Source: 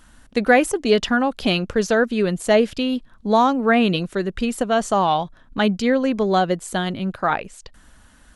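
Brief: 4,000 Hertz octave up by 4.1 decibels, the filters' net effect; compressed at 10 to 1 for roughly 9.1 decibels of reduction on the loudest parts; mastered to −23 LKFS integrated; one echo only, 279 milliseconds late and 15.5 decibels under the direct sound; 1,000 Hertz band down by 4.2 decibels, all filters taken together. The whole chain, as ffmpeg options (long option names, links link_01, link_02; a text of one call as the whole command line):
ffmpeg -i in.wav -af "equalizer=frequency=1000:width_type=o:gain=-6.5,equalizer=frequency=4000:width_type=o:gain=6,acompressor=threshold=-20dB:ratio=10,aecho=1:1:279:0.168,volume=2.5dB" out.wav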